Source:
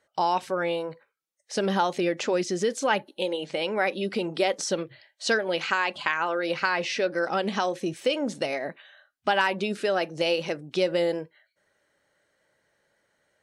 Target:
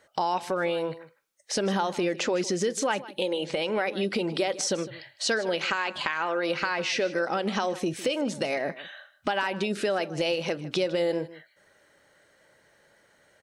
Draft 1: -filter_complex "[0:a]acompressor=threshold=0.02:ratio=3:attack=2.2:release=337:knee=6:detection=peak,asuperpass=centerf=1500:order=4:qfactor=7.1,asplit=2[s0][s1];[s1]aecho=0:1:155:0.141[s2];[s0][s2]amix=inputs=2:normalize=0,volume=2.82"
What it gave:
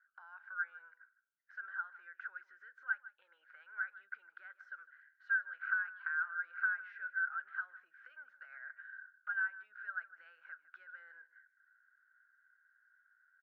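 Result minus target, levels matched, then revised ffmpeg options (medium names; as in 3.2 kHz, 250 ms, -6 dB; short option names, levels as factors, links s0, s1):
2 kHz band +7.5 dB
-filter_complex "[0:a]acompressor=threshold=0.02:ratio=3:attack=2.2:release=337:knee=6:detection=peak,asplit=2[s0][s1];[s1]aecho=0:1:155:0.141[s2];[s0][s2]amix=inputs=2:normalize=0,volume=2.82"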